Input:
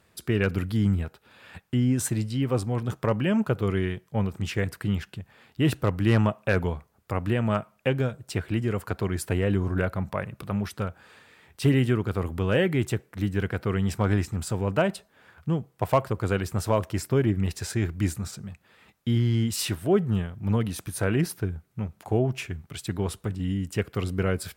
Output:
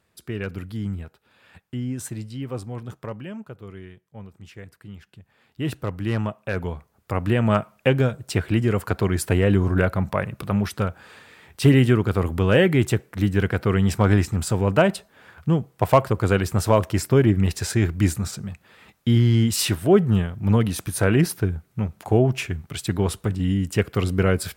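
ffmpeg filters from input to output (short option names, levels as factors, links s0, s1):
-af "volume=5.31,afade=t=out:st=2.79:d=0.65:silence=0.375837,afade=t=in:st=4.96:d=0.74:silence=0.298538,afade=t=in:st=6.51:d=1.06:silence=0.334965"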